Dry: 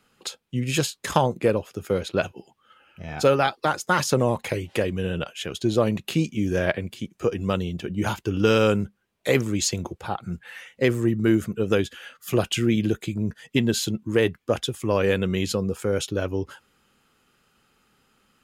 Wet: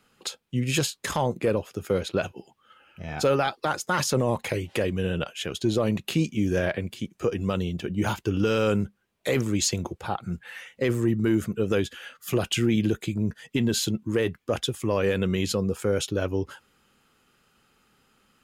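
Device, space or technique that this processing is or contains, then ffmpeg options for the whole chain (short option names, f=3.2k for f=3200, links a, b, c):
soft clipper into limiter: -filter_complex "[0:a]asettb=1/sr,asplit=3[a][b][c];[a]atrim=end=7.604[d];[b]atrim=start=7.6:end=8.38,asetpts=PTS-STARTPTS,afade=t=in:d=0.004:c=qsin,afade=t=out:st=0.776:d=0.004:c=qsin,deesser=0.75[e];[c]atrim=start=8.376[f];[d][e]acrossfade=d=0.004:c1=hsin:c2=qsin[g];[g][f]acrossfade=d=0.004:c1=qsin:c2=hsin,asoftclip=type=tanh:threshold=-4dB,alimiter=limit=-13.5dB:level=0:latency=1:release=29"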